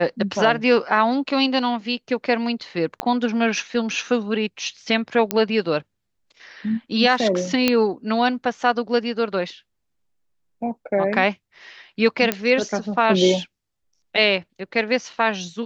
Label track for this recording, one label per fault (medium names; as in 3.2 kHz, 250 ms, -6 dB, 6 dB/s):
3.000000	3.000000	pop -8 dBFS
5.310000	5.310000	pop -4 dBFS
7.680000	7.680000	pop -3 dBFS
12.320000	12.320000	pop -5 dBFS